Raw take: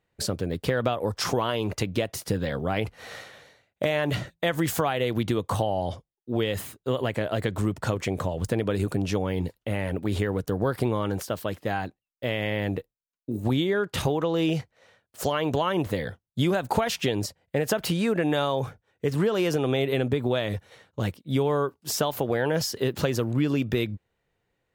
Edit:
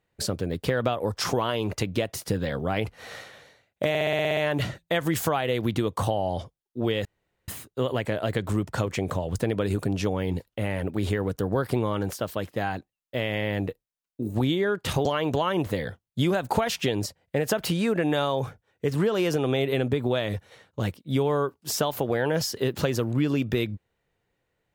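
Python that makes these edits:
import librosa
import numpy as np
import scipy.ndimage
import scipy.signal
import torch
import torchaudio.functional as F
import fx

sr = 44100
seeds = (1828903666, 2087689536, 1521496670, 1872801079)

y = fx.edit(x, sr, fx.stutter(start_s=3.89, slice_s=0.06, count=9),
    fx.insert_room_tone(at_s=6.57, length_s=0.43),
    fx.cut(start_s=14.14, length_s=1.11), tone=tone)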